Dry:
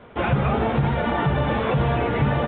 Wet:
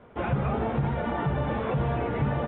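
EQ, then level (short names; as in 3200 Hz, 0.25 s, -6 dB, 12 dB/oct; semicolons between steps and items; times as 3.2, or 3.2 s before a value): high shelf 2700 Hz -10.5 dB; -5.5 dB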